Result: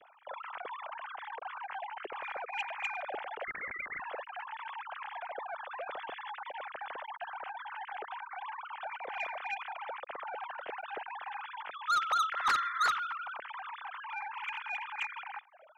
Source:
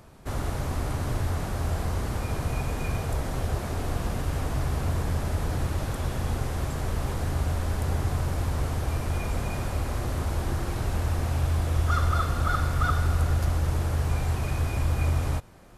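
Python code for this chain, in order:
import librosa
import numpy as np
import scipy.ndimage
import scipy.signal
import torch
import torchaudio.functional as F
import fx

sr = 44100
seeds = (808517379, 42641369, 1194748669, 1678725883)

y = fx.sine_speech(x, sr)
y = 10.0 ** (-17.0 / 20.0) * np.tanh(y / 10.0 ** (-17.0 / 20.0))
y = fx.freq_invert(y, sr, carrier_hz=2800, at=(3.44, 4.0))
y = fx.spec_paint(y, sr, seeds[0], shape='noise', start_s=12.36, length_s=0.54, low_hz=990.0, high_hz=2100.0, level_db=-33.0)
y = F.gain(torch.from_numpy(y), -8.0).numpy()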